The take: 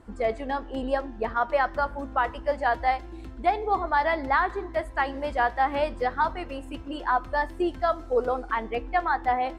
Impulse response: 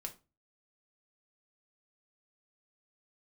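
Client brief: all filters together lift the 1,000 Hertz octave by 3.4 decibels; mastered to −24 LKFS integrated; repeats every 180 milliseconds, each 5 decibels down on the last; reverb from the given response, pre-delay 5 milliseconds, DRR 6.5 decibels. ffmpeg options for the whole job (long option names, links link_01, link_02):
-filter_complex "[0:a]equalizer=frequency=1000:width_type=o:gain=4.5,aecho=1:1:180|360|540|720|900|1080|1260:0.562|0.315|0.176|0.0988|0.0553|0.031|0.0173,asplit=2[link_01][link_02];[1:a]atrim=start_sample=2205,adelay=5[link_03];[link_02][link_03]afir=irnorm=-1:irlink=0,volume=-4dB[link_04];[link_01][link_04]amix=inputs=2:normalize=0,volume=-2dB"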